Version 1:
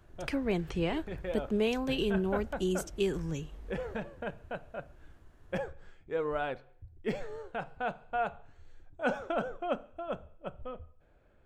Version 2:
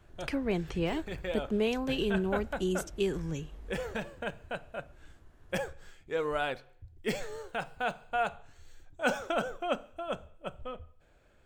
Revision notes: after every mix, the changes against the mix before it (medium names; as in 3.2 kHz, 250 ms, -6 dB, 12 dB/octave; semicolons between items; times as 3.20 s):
background: remove low-pass 1.3 kHz 6 dB/octave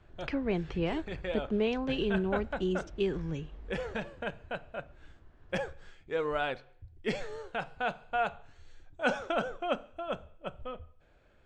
speech: add distance through air 75 m; master: add low-pass 5 kHz 12 dB/octave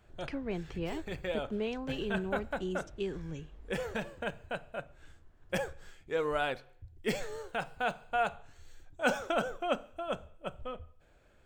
speech -5.5 dB; master: remove low-pass 5 kHz 12 dB/octave